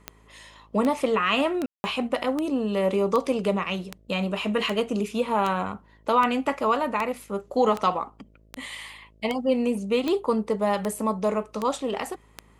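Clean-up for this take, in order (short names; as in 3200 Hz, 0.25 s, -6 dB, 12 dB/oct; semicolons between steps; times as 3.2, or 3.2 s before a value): de-click; de-hum 53.6 Hz, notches 12; room tone fill 1.66–1.84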